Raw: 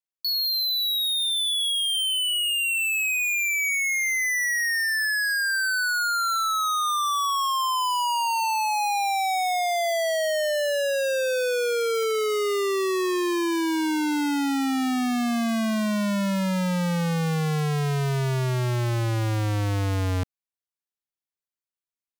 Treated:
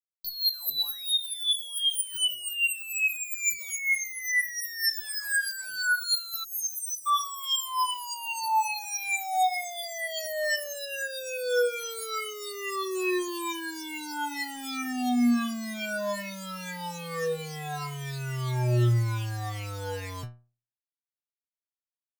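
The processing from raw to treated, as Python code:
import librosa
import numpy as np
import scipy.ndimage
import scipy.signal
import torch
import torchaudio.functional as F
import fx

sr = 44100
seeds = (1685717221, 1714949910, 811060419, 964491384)

y = fx.spec_ripple(x, sr, per_octave=0.79, drift_hz=0.5, depth_db=19)
y = fx.peak_eq(y, sr, hz=870.0, db=-10.5, octaves=1.2, at=(4.91, 7.27))
y = fx.fuzz(y, sr, gain_db=43.0, gate_db=-48.0)
y = fx.low_shelf(y, sr, hz=120.0, db=-4.0)
y = fx.stiff_resonator(y, sr, f0_hz=120.0, decay_s=0.37, stiffness=0.002)
y = fx.spec_erase(y, sr, start_s=6.44, length_s=0.63, low_hz=410.0, high_hz=4800.0)
y = F.gain(torch.from_numpy(y), -4.5).numpy()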